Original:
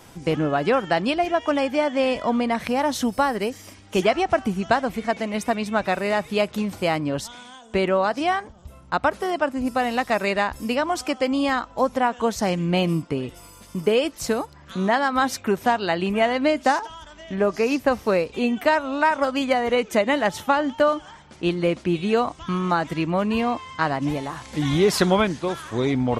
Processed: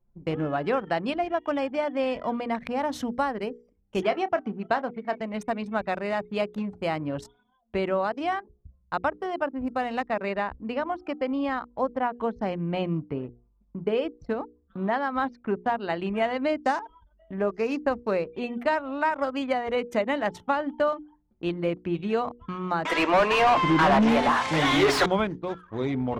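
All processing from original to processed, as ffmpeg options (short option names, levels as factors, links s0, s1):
-filter_complex "[0:a]asettb=1/sr,asplit=3[s0][s1][s2];[s0]atrim=end=4.034[s3];[s1]atrim=start=4.03:end=5.21,asetpts=PTS-STARTPTS,afade=t=in:d=0.004:c=qsin,afade=t=out:st=1.176:d=0.004:c=qsin,highpass=190,lowpass=6500,asplit=2[s4][s5];[s5]adelay=29,volume=0.224[s6];[s4][s6]amix=inputs=2:normalize=0,atrim=end_sample=52038[s7];[s2]atrim=start=5.206[s8];[s3][s7]acrossfade=d=0.004:c1=hsin:c2=qsin[s9];[s9][s8]acrossfade=d=0.004:c1=qsin:c2=hsin,asettb=1/sr,asplit=3[s10][s11][s12];[s10]atrim=end=10.084[s13];[s11]atrim=start=10.08:end=15.9,asetpts=PTS-STARTPTS,afade=t=in:d=0.004:c=qsin,afade=t=out:st=5.816:d=0.004:c=qsin,acrossover=split=5600[s14][s15];[s15]acompressor=threshold=0.00562:ratio=4:attack=1:release=60[s16];[s14][s16]amix=inputs=2:normalize=0,highshelf=f=3900:g=-8[s17];[s12]atrim=start=15.896[s18];[s13][s17]acrossfade=d=0.004:c1=hsin:c2=qsin[s19];[s19][s18]acrossfade=d=0.004:c1=qsin:c2=hsin,asettb=1/sr,asplit=3[s20][s21][s22];[s20]atrim=end=22.854[s23];[s21]atrim=start=22.85:end=25.06,asetpts=PTS-STARTPTS,afade=t=in:d=0.004:c=qsin,afade=t=out:st=2.206:d=0.004:c=qsin,acrossover=split=380[s24][s25];[s24]adelay=720[s26];[s26][s25]amix=inputs=2:normalize=0,atrim=end_sample=97461,asplit=2[s27][s28];[s28]highpass=f=720:p=1,volume=35.5,asoftclip=type=tanh:threshold=0.531[s29];[s27][s29]amix=inputs=2:normalize=0,lowpass=f=2700:p=1,volume=0.501[s30];[s22]atrim=start=25.056[s31];[s23][s30]acrossfade=d=0.004:c1=hsin:c2=qsin[s32];[s32][s31]acrossfade=d=0.004:c1=qsin:c2=hsin,anlmdn=15.8,highshelf=f=3900:g=-8.5,bandreject=f=60:t=h:w=6,bandreject=f=120:t=h:w=6,bandreject=f=180:t=h:w=6,bandreject=f=240:t=h:w=6,bandreject=f=300:t=h:w=6,bandreject=f=360:t=h:w=6,bandreject=f=420:t=h:w=6,bandreject=f=480:t=h:w=6,volume=0.562"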